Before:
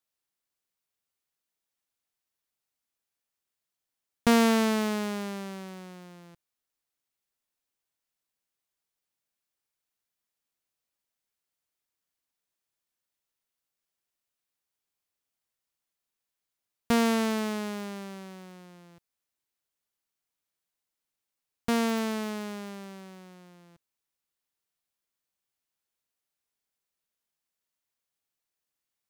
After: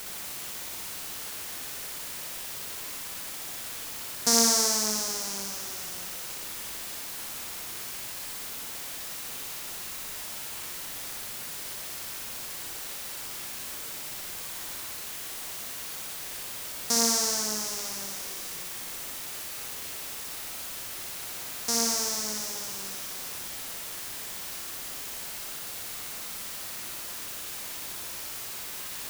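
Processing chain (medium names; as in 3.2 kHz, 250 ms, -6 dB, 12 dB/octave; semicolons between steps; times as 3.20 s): high-pass 600 Hz 6 dB/octave; resonant high shelf 4 kHz +13 dB, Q 3; word length cut 6-bit, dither triangular; on a send: flutter echo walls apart 10.4 m, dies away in 0.78 s; on the sum: trim -3.5 dB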